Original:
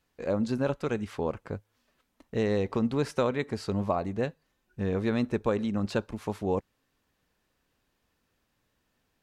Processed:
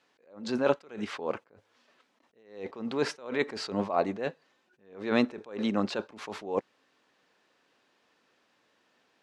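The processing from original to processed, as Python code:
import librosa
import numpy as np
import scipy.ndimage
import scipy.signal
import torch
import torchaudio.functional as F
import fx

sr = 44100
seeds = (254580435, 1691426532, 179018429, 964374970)

y = fx.bandpass_edges(x, sr, low_hz=320.0, high_hz=5400.0)
y = fx.attack_slew(y, sr, db_per_s=120.0)
y = y * librosa.db_to_amplitude(8.5)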